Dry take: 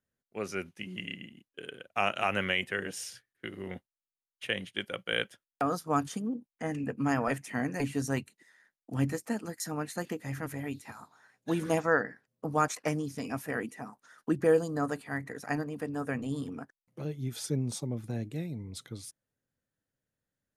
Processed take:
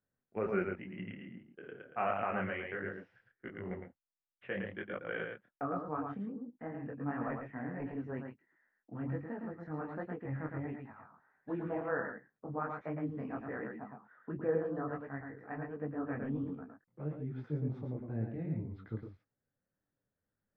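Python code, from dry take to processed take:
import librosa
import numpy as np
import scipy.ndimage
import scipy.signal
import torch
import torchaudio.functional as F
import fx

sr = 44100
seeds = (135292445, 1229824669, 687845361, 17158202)

p1 = scipy.signal.sosfilt(scipy.signal.butter(4, 1800.0, 'lowpass', fs=sr, output='sos'), x)
p2 = fx.level_steps(p1, sr, step_db=20)
p3 = p1 + F.gain(torch.from_numpy(p2), 3.0).numpy()
p4 = p3 + 10.0 ** (-4.5 / 20.0) * np.pad(p3, (int(111 * sr / 1000.0), 0))[:len(p3)]
p5 = fx.rider(p4, sr, range_db=10, speed_s=2.0)
p6 = fx.detune_double(p5, sr, cents=48)
y = F.gain(torch.from_numpy(p6), -8.0).numpy()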